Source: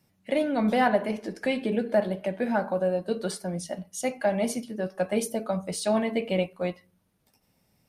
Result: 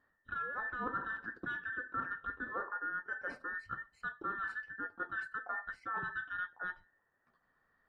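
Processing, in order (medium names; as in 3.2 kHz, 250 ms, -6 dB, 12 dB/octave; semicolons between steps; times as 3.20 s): every band turned upside down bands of 2 kHz; low-pass 1 kHz 12 dB/octave; reverse; compression 4:1, threshold -40 dBFS, peak gain reduction 15 dB; reverse; trim +2.5 dB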